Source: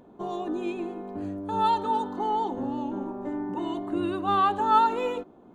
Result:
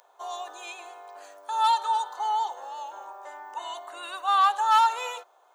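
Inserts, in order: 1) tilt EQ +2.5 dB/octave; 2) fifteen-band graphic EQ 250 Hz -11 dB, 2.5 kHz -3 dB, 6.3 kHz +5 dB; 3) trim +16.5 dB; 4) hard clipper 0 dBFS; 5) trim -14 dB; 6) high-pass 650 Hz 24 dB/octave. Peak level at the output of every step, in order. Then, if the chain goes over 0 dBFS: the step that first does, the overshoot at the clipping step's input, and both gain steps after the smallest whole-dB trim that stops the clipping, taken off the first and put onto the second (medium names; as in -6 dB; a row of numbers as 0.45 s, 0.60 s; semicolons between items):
-9.5 dBFS, -10.0 dBFS, +6.5 dBFS, 0.0 dBFS, -14.0 dBFS, -11.0 dBFS; step 3, 6.5 dB; step 3 +9.5 dB, step 5 -7 dB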